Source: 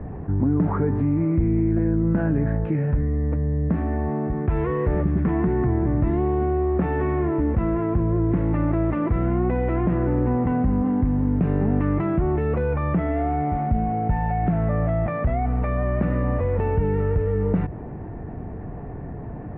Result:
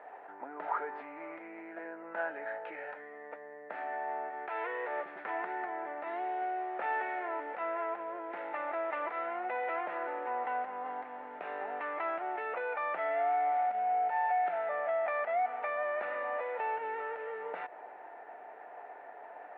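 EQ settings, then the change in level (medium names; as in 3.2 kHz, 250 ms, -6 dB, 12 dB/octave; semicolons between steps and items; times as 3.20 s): high-pass 690 Hz 24 dB/octave; band-stop 1.1 kHz, Q 5.9; 0.0 dB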